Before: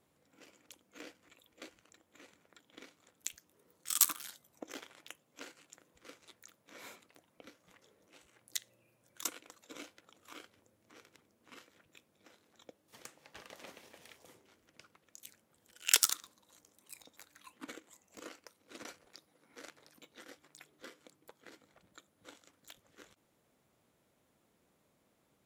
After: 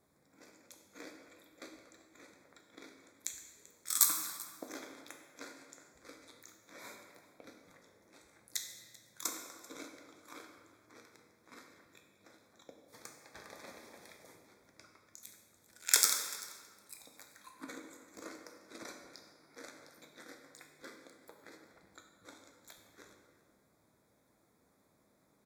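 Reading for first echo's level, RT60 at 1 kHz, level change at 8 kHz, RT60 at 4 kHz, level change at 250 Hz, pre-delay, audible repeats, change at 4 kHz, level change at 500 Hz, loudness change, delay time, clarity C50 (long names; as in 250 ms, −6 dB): −20.0 dB, 1.7 s, +1.5 dB, 1.3 s, +3.0 dB, 8 ms, 1, −0.5 dB, +2.5 dB, 0.0 dB, 389 ms, 4.5 dB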